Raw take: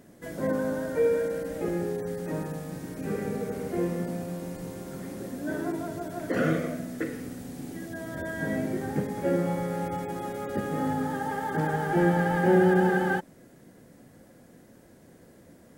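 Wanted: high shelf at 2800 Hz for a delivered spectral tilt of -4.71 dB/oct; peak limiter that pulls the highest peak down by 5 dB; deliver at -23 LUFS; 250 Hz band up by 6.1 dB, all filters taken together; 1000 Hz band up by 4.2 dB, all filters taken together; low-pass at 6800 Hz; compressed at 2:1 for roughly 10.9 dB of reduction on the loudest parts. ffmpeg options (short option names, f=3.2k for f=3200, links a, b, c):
-af "lowpass=6.8k,equalizer=f=250:t=o:g=8.5,equalizer=f=1k:t=o:g=4.5,highshelf=f=2.8k:g=3.5,acompressor=threshold=-33dB:ratio=2,volume=9.5dB,alimiter=limit=-12.5dB:level=0:latency=1"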